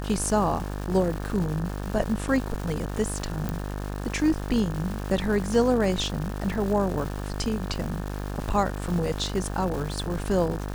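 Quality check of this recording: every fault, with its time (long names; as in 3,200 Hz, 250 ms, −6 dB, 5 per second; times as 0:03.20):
mains buzz 50 Hz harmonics 36 −32 dBFS
surface crackle 530 per second −33 dBFS
0:03.49: click −15 dBFS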